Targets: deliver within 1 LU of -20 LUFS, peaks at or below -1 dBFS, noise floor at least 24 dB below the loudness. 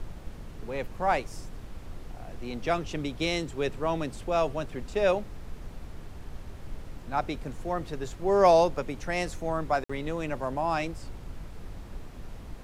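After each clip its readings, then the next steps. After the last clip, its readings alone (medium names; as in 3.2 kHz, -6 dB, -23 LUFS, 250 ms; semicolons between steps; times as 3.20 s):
dropouts 1; longest dropout 55 ms; noise floor -44 dBFS; noise floor target -53 dBFS; loudness -29.0 LUFS; peak level -8.5 dBFS; loudness target -20.0 LUFS
-> interpolate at 9.84 s, 55 ms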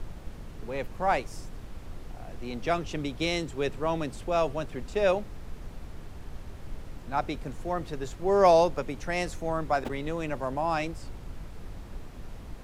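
dropouts 0; noise floor -44 dBFS; noise floor target -53 dBFS
-> noise print and reduce 9 dB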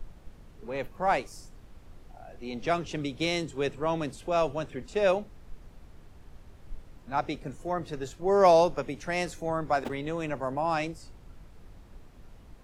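noise floor -52 dBFS; noise floor target -53 dBFS
-> noise print and reduce 6 dB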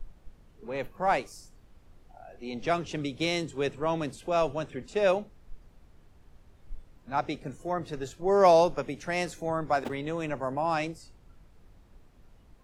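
noise floor -58 dBFS; loudness -29.0 LUFS; peak level -9.0 dBFS; loudness target -20.0 LUFS
-> trim +9 dB; peak limiter -1 dBFS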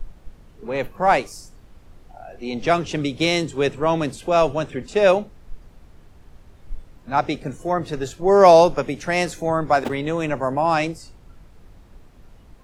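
loudness -20.0 LUFS; peak level -1.0 dBFS; noise floor -49 dBFS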